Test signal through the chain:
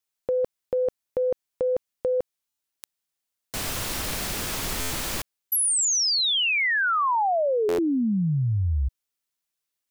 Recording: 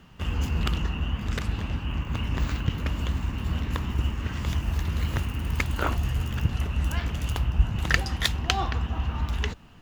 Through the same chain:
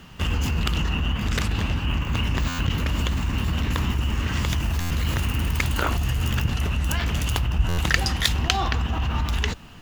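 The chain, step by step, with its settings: treble shelf 2.2 kHz +5.5 dB; in parallel at -0.5 dB: compressor with a negative ratio -28 dBFS, ratio -0.5; on the sum: buffer glitch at 2.48/4.80/7.68 s, samples 512, times 8; trim -1 dB

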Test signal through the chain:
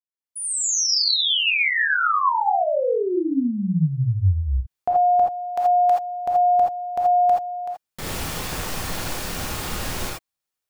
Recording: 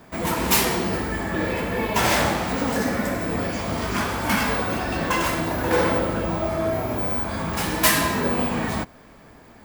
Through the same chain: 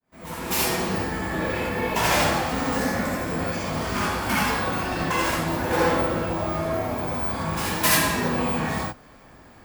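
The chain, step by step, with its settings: fade-in on the opening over 0.83 s; gated-style reverb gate 100 ms rising, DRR -2 dB; trim -4.5 dB

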